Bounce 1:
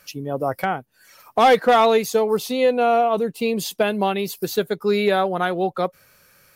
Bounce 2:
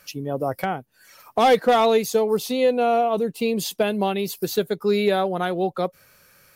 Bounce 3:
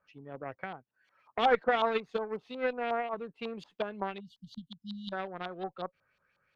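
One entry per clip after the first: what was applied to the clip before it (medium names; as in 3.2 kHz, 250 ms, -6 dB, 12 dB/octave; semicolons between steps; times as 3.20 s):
dynamic bell 1.4 kHz, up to -5 dB, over -31 dBFS, Q 0.71
Chebyshev shaper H 2 -26 dB, 3 -12 dB, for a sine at -8 dBFS; spectral selection erased 4.20–5.13 s, 260–2800 Hz; LFO low-pass saw up 5.5 Hz 940–3600 Hz; trim -8 dB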